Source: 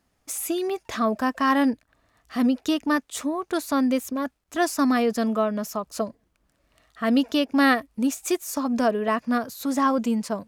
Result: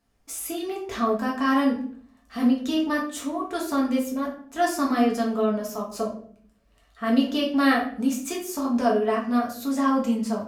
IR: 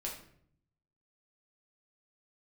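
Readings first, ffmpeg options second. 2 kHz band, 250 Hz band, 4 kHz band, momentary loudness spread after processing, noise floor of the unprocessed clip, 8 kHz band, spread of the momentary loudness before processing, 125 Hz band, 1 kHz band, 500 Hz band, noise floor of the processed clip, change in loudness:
-2.0 dB, 0.0 dB, -1.0 dB, 10 LU, -71 dBFS, -2.5 dB, 10 LU, n/a, -1.0 dB, 0.0 dB, -61 dBFS, -0.5 dB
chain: -filter_complex "[1:a]atrim=start_sample=2205,asetrate=52920,aresample=44100[a];[0:a][a]afir=irnorm=-1:irlink=0"

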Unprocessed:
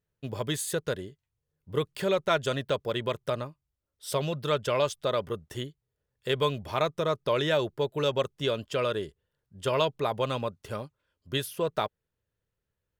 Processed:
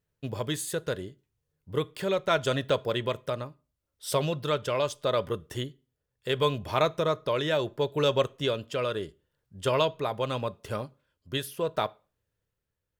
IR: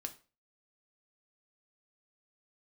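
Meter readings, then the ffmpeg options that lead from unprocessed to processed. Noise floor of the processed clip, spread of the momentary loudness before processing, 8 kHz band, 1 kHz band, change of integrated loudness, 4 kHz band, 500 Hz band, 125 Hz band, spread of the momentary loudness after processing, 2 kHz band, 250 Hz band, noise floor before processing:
-84 dBFS, 12 LU, -0.5 dB, +0.5 dB, +0.5 dB, +0.5 dB, +0.5 dB, +1.0 dB, 10 LU, 0.0 dB, +0.5 dB, -85 dBFS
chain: -filter_complex "[0:a]tremolo=f=0.74:d=0.38,asplit=2[a][b];[1:a]atrim=start_sample=2205[c];[b][c]afir=irnorm=-1:irlink=0,volume=-6dB[d];[a][d]amix=inputs=2:normalize=0"

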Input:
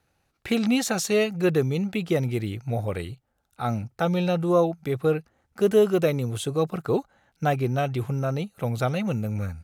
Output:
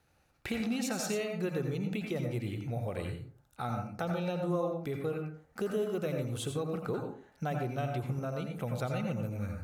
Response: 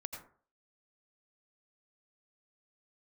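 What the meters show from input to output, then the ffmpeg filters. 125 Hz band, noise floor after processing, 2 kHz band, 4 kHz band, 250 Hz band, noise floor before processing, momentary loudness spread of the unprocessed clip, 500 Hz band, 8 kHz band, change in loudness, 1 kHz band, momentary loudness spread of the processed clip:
-8.5 dB, -69 dBFS, -9.0 dB, -9.5 dB, -9.5 dB, -73 dBFS, 8 LU, -11.0 dB, -8.5 dB, -10.0 dB, -9.0 dB, 6 LU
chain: -filter_complex "[0:a]acompressor=threshold=-37dB:ratio=2.5[a];[1:a]atrim=start_sample=2205[b];[a][b]afir=irnorm=-1:irlink=0,volume=3dB"

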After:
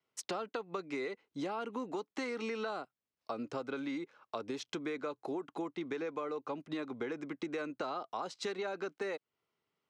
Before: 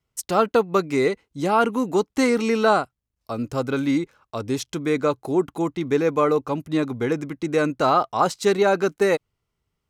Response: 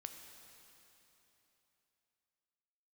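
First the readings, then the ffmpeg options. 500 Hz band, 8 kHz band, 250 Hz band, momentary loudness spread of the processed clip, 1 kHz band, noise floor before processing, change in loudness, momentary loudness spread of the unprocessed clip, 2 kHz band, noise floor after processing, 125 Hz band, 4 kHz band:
-18.0 dB, -15.5 dB, -17.0 dB, 3 LU, -18.5 dB, -80 dBFS, -17.5 dB, 8 LU, -15.0 dB, under -85 dBFS, -22.5 dB, -13.0 dB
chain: -filter_complex "[0:a]acrossover=split=780[a][b];[a]alimiter=limit=-18dB:level=0:latency=1:release=78[c];[c][b]amix=inputs=2:normalize=0,acrossover=split=490|3000[d][e][f];[e]acompressor=threshold=-24dB:ratio=6[g];[d][g][f]amix=inputs=3:normalize=0,highpass=280,lowpass=4.6k,acompressor=threshold=-34dB:ratio=6,volume=-2dB"

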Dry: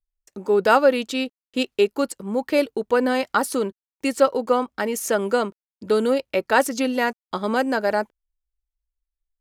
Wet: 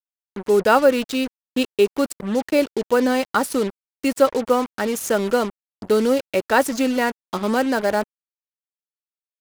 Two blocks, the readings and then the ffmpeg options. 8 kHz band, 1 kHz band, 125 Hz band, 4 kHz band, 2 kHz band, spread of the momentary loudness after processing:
+1.5 dB, +0.5 dB, n/a, +1.0 dB, +0.5 dB, 8 LU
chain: -af "lowshelf=f=270:g=6,acrusher=bits=4:mix=0:aa=0.5"

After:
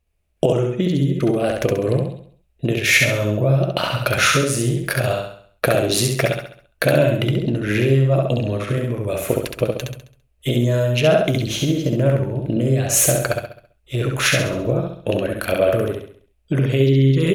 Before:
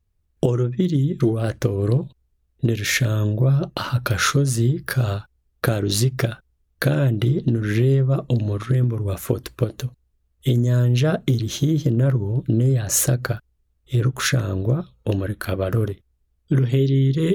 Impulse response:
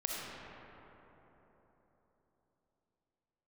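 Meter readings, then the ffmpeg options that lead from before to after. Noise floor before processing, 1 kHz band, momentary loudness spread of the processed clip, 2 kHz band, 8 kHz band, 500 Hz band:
-68 dBFS, +5.0 dB, 9 LU, +6.5 dB, +4.0 dB, +6.5 dB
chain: -filter_complex "[0:a]equalizer=f=100:t=o:w=0.67:g=-6,equalizer=f=630:t=o:w=0.67:g=11,equalizer=f=2.5k:t=o:w=0.67:g=11,equalizer=f=10k:t=o:w=0.67:g=5,asplit=2[a][b];[b]aecho=0:1:67|134|201|268|335|402:0.708|0.304|0.131|0.0563|0.0242|0.0104[c];[a][c]amix=inputs=2:normalize=0,volume=-1dB"

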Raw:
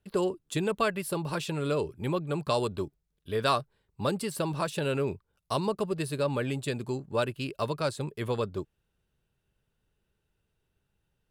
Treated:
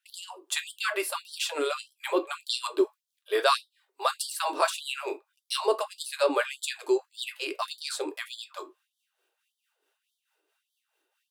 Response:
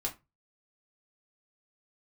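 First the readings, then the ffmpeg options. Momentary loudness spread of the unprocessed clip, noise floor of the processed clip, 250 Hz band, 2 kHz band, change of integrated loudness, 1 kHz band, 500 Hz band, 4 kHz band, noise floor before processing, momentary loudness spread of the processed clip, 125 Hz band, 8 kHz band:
6 LU, -84 dBFS, -5.0 dB, +4.5 dB, +1.5 dB, +2.5 dB, +0.5 dB, +6.5 dB, -79 dBFS, 12 LU, under -40 dB, +6.5 dB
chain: -filter_complex "[0:a]acrossover=split=660[a][b];[a]aeval=exprs='val(0)*(1-0.5/2+0.5/2*cos(2*PI*4.6*n/s))':c=same[c];[b]aeval=exprs='val(0)*(1-0.5/2-0.5/2*cos(2*PI*4.6*n/s))':c=same[d];[c][d]amix=inputs=2:normalize=0,asplit=2[e][f];[1:a]atrim=start_sample=2205[g];[f][g]afir=irnorm=-1:irlink=0,volume=-2dB[h];[e][h]amix=inputs=2:normalize=0,afftfilt=real='re*gte(b*sr/1024,290*pow(3100/290,0.5+0.5*sin(2*PI*1.7*pts/sr)))':imag='im*gte(b*sr/1024,290*pow(3100/290,0.5+0.5*sin(2*PI*1.7*pts/sr)))':win_size=1024:overlap=0.75,volume=4dB"

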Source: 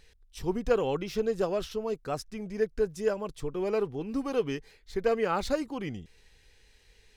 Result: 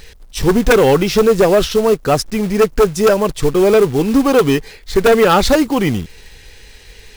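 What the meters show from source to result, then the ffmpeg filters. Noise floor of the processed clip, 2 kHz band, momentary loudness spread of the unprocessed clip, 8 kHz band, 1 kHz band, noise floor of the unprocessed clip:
-41 dBFS, +19.5 dB, 9 LU, +22.0 dB, +18.0 dB, -62 dBFS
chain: -af "acrusher=bits=4:mode=log:mix=0:aa=0.000001,aeval=exprs='0.2*sin(PI/2*2.51*val(0)/0.2)':c=same,volume=8.5dB"

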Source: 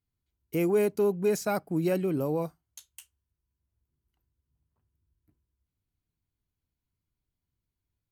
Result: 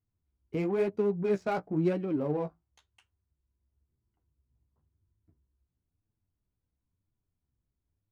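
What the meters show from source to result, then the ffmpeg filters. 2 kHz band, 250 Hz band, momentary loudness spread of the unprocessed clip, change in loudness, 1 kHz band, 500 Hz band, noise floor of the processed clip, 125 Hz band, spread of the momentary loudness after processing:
-3.5 dB, -1.5 dB, 7 LU, -2.5 dB, -1.0 dB, -3.0 dB, -85 dBFS, -1.5 dB, 6 LU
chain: -filter_complex "[0:a]asplit=2[a][b];[b]acompressor=threshold=-38dB:ratio=6,volume=0dB[c];[a][c]amix=inputs=2:normalize=0,flanger=delay=9:depth=8.3:regen=24:speed=0.98:shape=sinusoidal,adynamicsmooth=sensitivity=4.5:basefreq=1.4k"

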